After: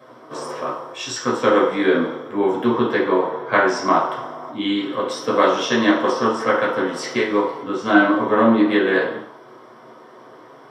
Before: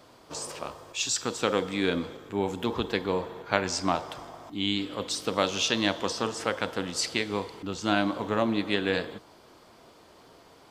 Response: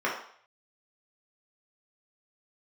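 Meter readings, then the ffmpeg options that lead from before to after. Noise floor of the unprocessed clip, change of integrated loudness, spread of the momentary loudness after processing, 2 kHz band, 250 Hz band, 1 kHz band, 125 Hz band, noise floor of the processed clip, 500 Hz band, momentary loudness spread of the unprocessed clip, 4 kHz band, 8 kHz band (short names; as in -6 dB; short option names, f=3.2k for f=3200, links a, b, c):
-55 dBFS, +9.5 dB, 12 LU, +10.5 dB, +11.0 dB, +12.0 dB, +2.5 dB, -45 dBFS, +11.5 dB, 10 LU, +1.0 dB, -2.5 dB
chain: -filter_complex "[0:a]equalizer=f=125:t=o:w=0.33:g=8,equalizer=f=315:t=o:w=0.33:g=5,equalizer=f=2.5k:t=o:w=0.33:g=-8[a];[1:a]atrim=start_sample=2205[b];[a][b]afir=irnorm=-1:irlink=0,volume=-1dB"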